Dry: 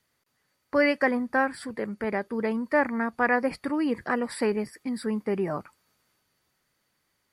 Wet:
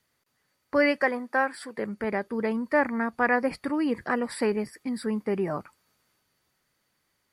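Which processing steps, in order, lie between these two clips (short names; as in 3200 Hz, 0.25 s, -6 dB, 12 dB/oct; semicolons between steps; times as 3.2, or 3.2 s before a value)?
1.02–1.78 HPF 350 Hz 12 dB/oct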